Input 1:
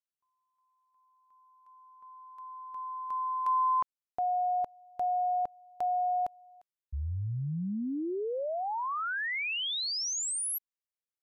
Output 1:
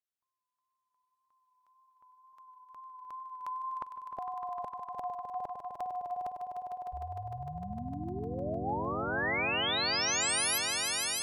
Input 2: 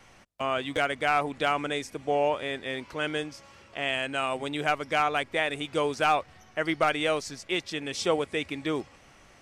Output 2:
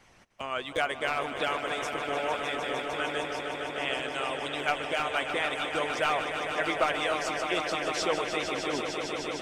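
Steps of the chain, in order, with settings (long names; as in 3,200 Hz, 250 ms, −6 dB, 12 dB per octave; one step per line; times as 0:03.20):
tape wow and flutter 28 cents
echo that builds up and dies away 152 ms, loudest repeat 5, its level −8.5 dB
harmonic and percussive parts rebalanced harmonic −11 dB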